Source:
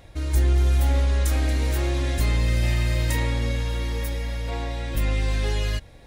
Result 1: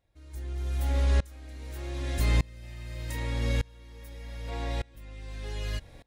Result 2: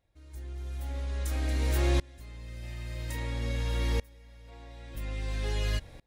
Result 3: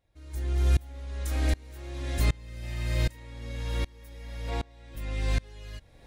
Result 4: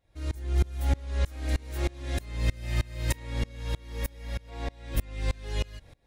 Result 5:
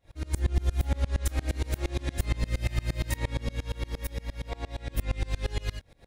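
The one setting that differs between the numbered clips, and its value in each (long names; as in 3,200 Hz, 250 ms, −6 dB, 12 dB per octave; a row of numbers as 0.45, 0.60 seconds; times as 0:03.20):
tremolo with a ramp in dB, speed: 0.83, 0.5, 1.3, 3.2, 8.6 Hertz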